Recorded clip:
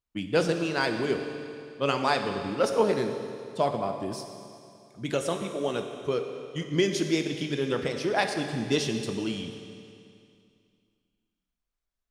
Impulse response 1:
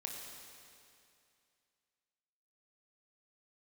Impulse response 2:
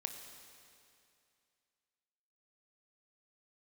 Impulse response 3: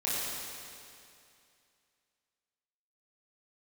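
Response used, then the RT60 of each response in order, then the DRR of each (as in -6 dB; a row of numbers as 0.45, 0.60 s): 2; 2.5, 2.5, 2.5 s; -0.5, 5.0, -9.0 dB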